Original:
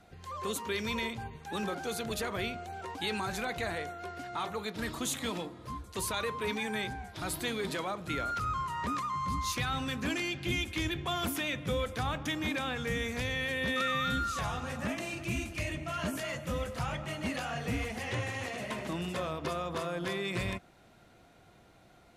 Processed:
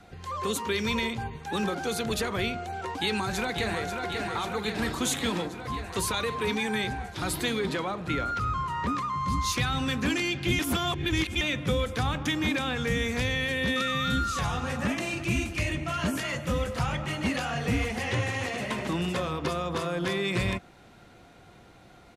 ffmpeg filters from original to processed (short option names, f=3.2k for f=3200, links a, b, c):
-filter_complex "[0:a]asplit=2[a][b];[b]afade=t=in:st=2.81:d=0.01,afade=t=out:st=3.84:d=0.01,aecho=0:1:540|1080|1620|2160|2700|3240|3780|4320|4860|5400|5940|6480:0.446684|0.335013|0.25126|0.188445|0.141333|0.106|0.0795001|0.0596251|0.0447188|0.0335391|0.0251543|0.0188657[c];[a][c]amix=inputs=2:normalize=0,asettb=1/sr,asplit=3[d][e][f];[d]atrim=end=7.594[g];[e]atrim=start=7.59:end=9.26,asetpts=PTS-STARTPTS,afade=t=in:d=0.004:c=qsin,afade=t=out:st=1.666:d=0.004:c=qsin,highshelf=f=4.6k:g=-8.5[h];[f]atrim=start=9.256[i];[g][h]acrossfade=d=0.004:c1=hsin:c2=qsin[j];[j][i]acrossfade=d=0.004:c1=qsin:c2=hsin,asplit=3[k][l][m];[k]atrim=end=10.592[n];[l]atrim=start=10.588:end=11.412,asetpts=PTS-STARTPTS,areverse[o];[m]atrim=start=11.408[p];[n][o]acrossfade=d=0.004:c1=hsin:c2=hsin[q];[q][p]acrossfade=d=0.004:c1=hsin:c2=hsin,highshelf=f=12k:g=-8.5,bandreject=f=640:w=12,acrossover=split=360|3000[r][s][t];[s]acompressor=threshold=-36dB:ratio=6[u];[r][u][t]amix=inputs=3:normalize=0,volume=7dB"